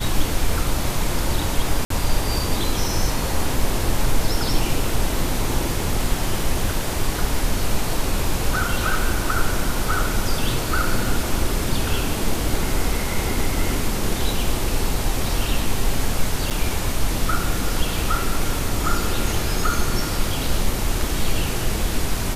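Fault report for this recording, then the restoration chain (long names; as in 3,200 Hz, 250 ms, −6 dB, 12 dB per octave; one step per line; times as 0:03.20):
0:01.85–0:01.90: drop-out 53 ms
0:16.50–0:16.51: drop-out 8.1 ms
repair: repair the gap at 0:01.85, 53 ms
repair the gap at 0:16.50, 8.1 ms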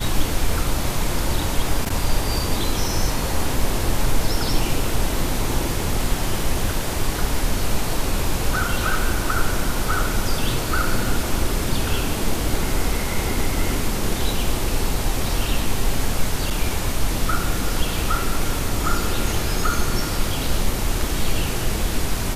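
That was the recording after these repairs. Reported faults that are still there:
none of them is left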